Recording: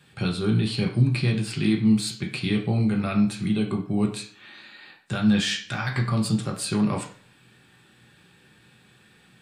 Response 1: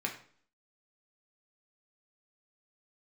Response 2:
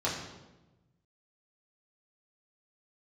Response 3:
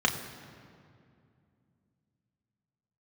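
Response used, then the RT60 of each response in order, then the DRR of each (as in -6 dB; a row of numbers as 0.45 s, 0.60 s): 1; 0.50 s, 1.1 s, 2.4 s; 0.0 dB, -7.5 dB, 2.0 dB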